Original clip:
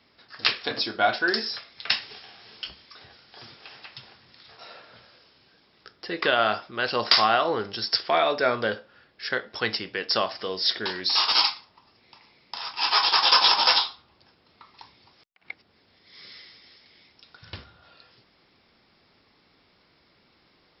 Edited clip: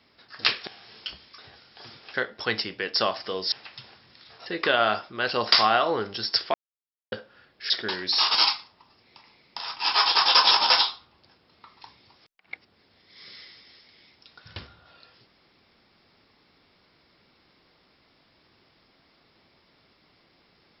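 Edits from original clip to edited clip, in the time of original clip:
0.67–2.24 s: delete
4.65–6.05 s: delete
8.13–8.71 s: mute
9.29–10.67 s: move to 3.71 s

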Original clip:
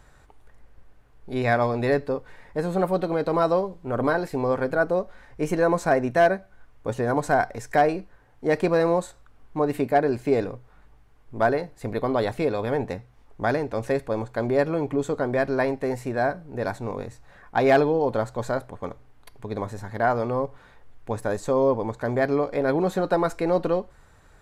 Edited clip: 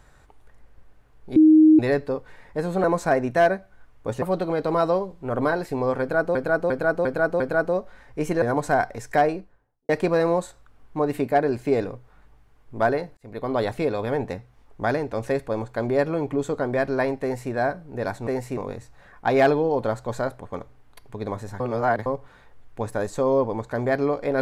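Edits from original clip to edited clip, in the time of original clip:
1.36–1.79 s: bleep 312 Hz -9.5 dBFS
4.62–4.97 s: loop, 5 plays
5.64–7.02 s: move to 2.84 s
7.77–8.49 s: studio fade out
11.77–12.18 s: fade in
15.82–16.12 s: copy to 16.87 s
19.90–20.36 s: reverse

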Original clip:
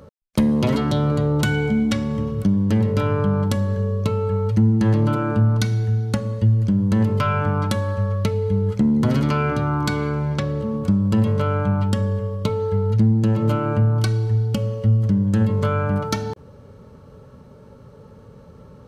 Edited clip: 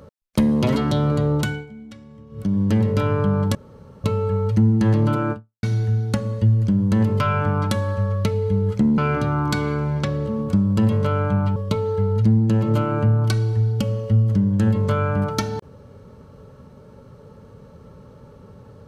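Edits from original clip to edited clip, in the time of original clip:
1.34–2.61 s: dip -20 dB, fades 0.32 s
3.55–4.04 s: room tone
5.32–5.63 s: fade out exponential
8.98–9.33 s: delete
11.91–12.30 s: delete

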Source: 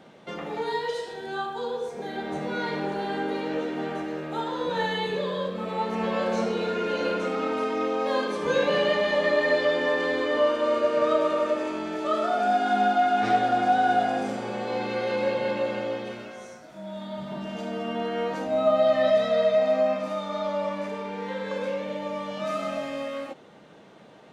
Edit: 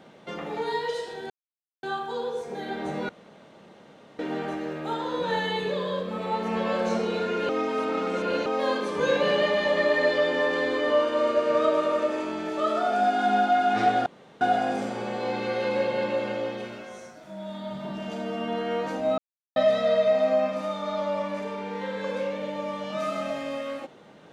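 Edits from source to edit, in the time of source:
1.30 s: insert silence 0.53 s
2.56–3.66 s: room tone
6.96–7.93 s: reverse
13.53–13.88 s: room tone
18.65–19.03 s: mute

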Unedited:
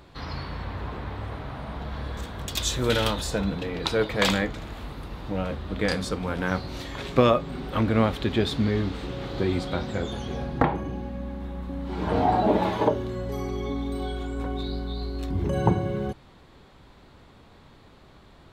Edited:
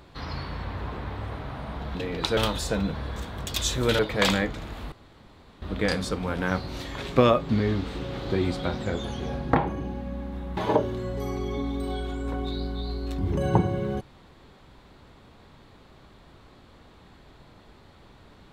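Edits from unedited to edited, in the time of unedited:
1.95–3.00 s: swap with 3.57–3.99 s
4.92–5.62 s: room tone
7.49–8.57 s: delete
11.65–12.69 s: delete

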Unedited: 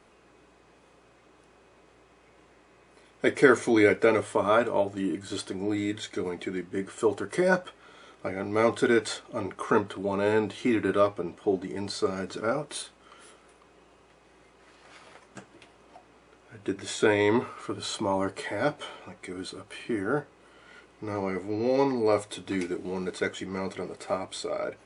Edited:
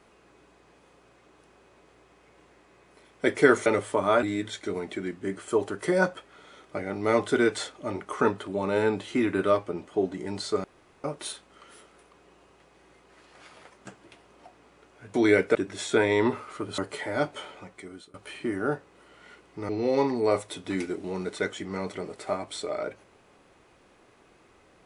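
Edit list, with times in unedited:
3.66–4.07 s: move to 16.64 s
4.64–5.73 s: delete
12.14–12.54 s: room tone
17.87–18.23 s: delete
19.07–19.59 s: fade out, to -22.5 dB
21.14–21.50 s: delete

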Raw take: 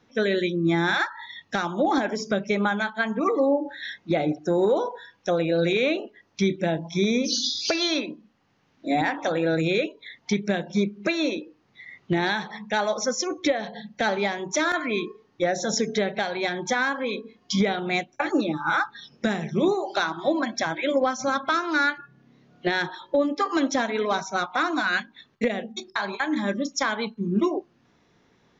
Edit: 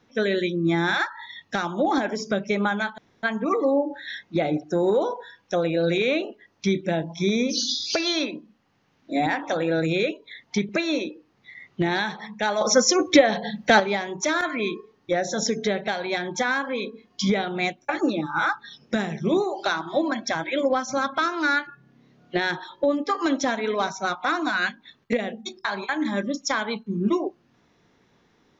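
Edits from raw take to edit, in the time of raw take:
2.98 s: insert room tone 0.25 s
10.44–11.00 s: delete
12.92–14.11 s: gain +8 dB

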